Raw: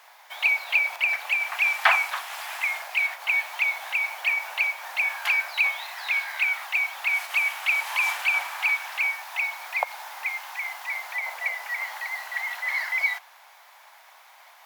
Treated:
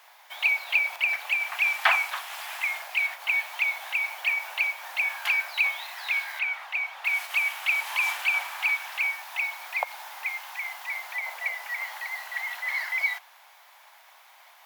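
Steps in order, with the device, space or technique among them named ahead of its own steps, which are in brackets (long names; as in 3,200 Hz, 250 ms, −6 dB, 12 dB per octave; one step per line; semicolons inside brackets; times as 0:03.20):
0:06.39–0:07.05: low-pass filter 2,400 Hz 6 dB per octave
presence and air boost (parametric band 3,100 Hz +2.5 dB; high-shelf EQ 12,000 Hz +4.5 dB)
level −3 dB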